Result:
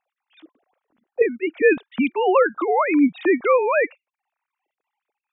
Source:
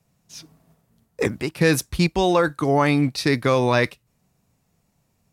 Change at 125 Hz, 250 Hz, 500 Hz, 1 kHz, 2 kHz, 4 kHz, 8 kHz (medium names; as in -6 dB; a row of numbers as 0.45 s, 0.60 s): under -25 dB, +0.5 dB, +3.0 dB, +1.5 dB, +1.0 dB, under -10 dB, under -40 dB